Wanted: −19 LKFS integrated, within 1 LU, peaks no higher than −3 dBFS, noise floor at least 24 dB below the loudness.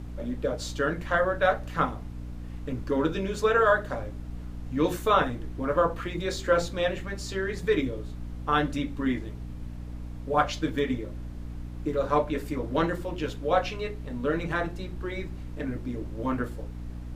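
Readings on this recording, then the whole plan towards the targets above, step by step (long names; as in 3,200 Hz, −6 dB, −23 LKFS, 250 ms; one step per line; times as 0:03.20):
mains hum 60 Hz; hum harmonics up to 300 Hz; level of the hum −36 dBFS; background noise floor −38 dBFS; target noise floor −53 dBFS; integrated loudness −28.5 LKFS; sample peak −8.0 dBFS; target loudness −19.0 LKFS
→ hum removal 60 Hz, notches 5
noise reduction from a noise print 15 dB
level +9.5 dB
brickwall limiter −3 dBFS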